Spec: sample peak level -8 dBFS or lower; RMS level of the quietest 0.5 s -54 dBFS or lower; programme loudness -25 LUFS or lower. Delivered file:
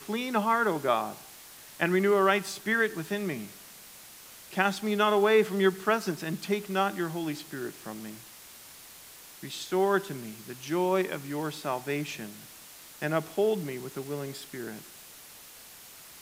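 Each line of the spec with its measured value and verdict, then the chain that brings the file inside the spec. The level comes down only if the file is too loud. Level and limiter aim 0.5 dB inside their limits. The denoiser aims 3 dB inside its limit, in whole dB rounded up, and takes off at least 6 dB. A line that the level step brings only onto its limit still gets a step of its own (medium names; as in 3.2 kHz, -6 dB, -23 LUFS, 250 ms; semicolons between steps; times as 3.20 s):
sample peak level -8.5 dBFS: pass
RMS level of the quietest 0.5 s -49 dBFS: fail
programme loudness -29.0 LUFS: pass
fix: noise reduction 8 dB, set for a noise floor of -49 dBFS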